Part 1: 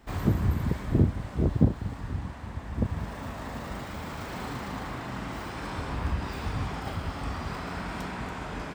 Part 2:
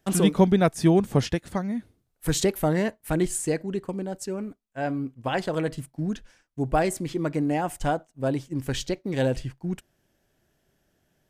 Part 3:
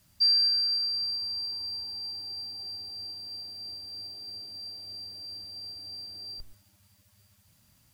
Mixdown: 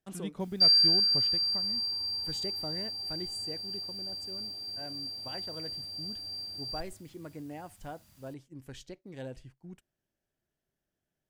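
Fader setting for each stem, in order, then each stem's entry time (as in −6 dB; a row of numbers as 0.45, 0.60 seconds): muted, −17.5 dB, +1.5 dB; muted, 0.00 s, 0.40 s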